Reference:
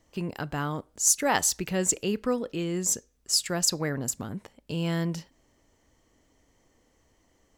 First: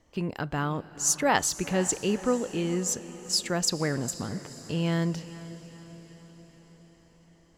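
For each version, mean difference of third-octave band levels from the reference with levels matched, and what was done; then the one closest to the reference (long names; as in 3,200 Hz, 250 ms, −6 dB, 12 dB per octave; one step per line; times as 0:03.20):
5.5 dB: high-shelf EQ 8,300 Hz −11.5 dB
on a send: feedback delay with all-pass diffusion 480 ms, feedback 57%, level −15.5 dB
on the sum: level +1.5 dB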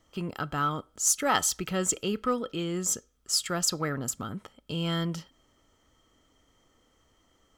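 1.0 dB: hollow resonant body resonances 1,300/3,200 Hz, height 16 dB, ringing for 35 ms
in parallel at −9 dB: soft clipping −23.5 dBFS, distortion −10 dB
on the sum: level −4 dB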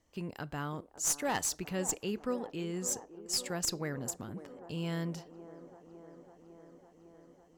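3.5 dB: asymmetric clip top −21 dBFS
delay with a band-pass on its return 554 ms, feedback 75%, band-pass 530 Hz, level −11.5 dB
level −7.5 dB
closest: second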